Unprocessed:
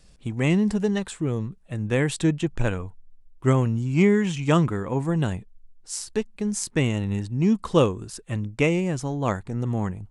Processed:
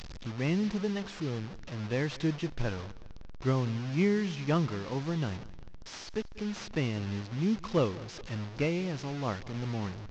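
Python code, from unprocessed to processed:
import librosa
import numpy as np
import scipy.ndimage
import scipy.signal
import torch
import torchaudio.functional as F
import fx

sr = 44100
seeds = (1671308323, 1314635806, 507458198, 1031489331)

p1 = fx.delta_mod(x, sr, bps=32000, step_db=-28.5)
p2 = p1 + fx.echo_feedback(p1, sr, ms=193, feedback_pct=37, wet_db=-20.5, dry=0)
y = F.gain(torch.from_numpy(p2), -8.5).numpy()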